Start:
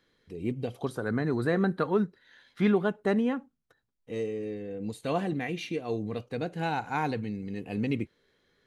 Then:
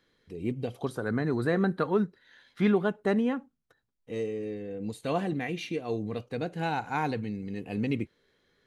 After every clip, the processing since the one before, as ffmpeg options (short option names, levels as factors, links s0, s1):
-af anull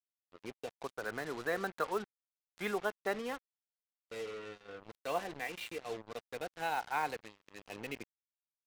-filter_complex "[0:a]acrossover=split=470 5000:gain=0.126 1 0.0794[s0][s1][s2];[s0][s1][s2]amix=inputs=3:normalize=0,aeval=exprs='sgn(val(0))*max(abs(val(0))-0.00211,0)':c=same,acrusher=bits=6:mix=0:aa=0.5,volume=0.75"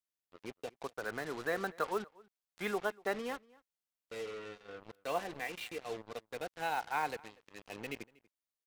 -filter_complex "[0:a]asplit=2[s0][s1];[s1]adelay=239.1,volume=0.0631,highshelf=f=4000:g=-5.38[s2];[s0][s2]amix=inputs=2:normalize=0"